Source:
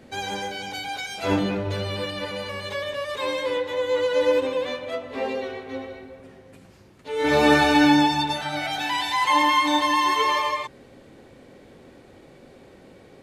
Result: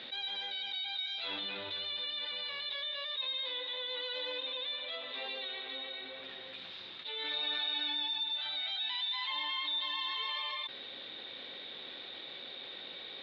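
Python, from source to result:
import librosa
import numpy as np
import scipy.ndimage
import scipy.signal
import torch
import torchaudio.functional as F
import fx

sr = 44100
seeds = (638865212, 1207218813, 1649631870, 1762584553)

y = fx.bandpass_q(x, sr, hz=3700.0, q=16.0)
y = fx.air_absorb(y, sr, metres=370.0)
y = fx.env_flatten(y, sr, amount_pct=70)
y = F.gain(torch.from_numpy(y), 7.0).numpy()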